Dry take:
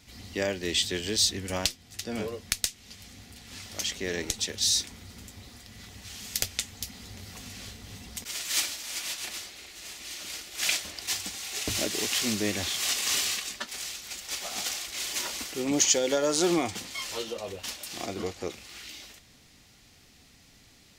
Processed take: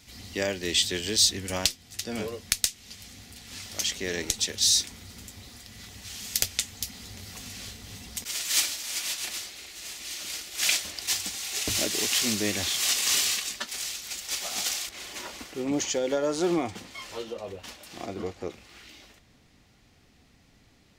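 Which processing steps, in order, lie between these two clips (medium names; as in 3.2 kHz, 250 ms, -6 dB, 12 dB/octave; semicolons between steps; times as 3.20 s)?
treble shelf 2.7 kHz +4 dB, from 14.89 s -10.5 dB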